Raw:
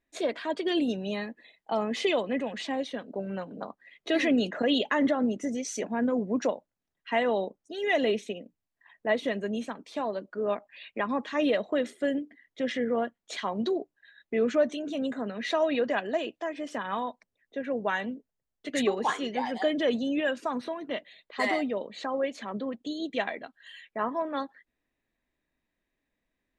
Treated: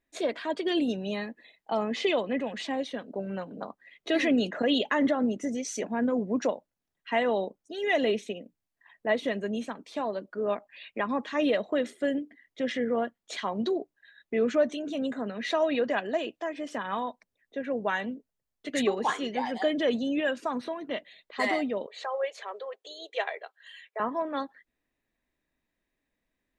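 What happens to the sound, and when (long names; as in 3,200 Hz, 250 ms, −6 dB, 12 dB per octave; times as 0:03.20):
0:01.91–0:02.45: low-pass filter 6,500 Hz
0:21.86–0:24.00: elliptic high-pass filter 410 Hz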